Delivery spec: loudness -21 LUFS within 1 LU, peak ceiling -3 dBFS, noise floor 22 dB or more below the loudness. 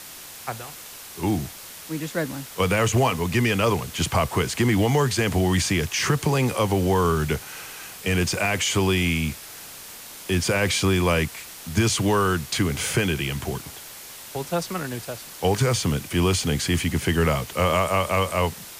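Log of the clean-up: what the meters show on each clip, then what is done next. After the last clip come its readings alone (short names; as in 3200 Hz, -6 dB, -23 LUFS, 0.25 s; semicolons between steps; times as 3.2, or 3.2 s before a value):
noise floor -41 dBFS; noise floor target -45 dBFS; loudness -23.0 LUFS; peak -8.5 dBFS; loudness target -21.0 LUFS
-> denoiser 6 dB, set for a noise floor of -41 dBFS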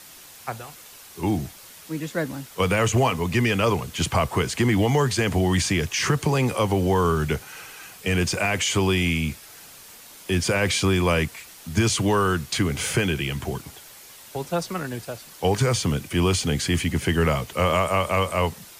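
noise floor -46 dBFS; loudness -23.0 LUFS; peak -8.5 dBFS; loudness target -21.0 LUFS
-> gain +2 dB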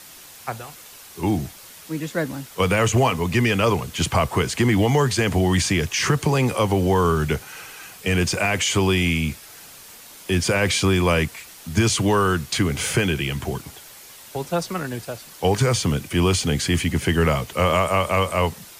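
loudness -21.0 LUFS; peak -6.5 dBFS; noise floor -44 dBFS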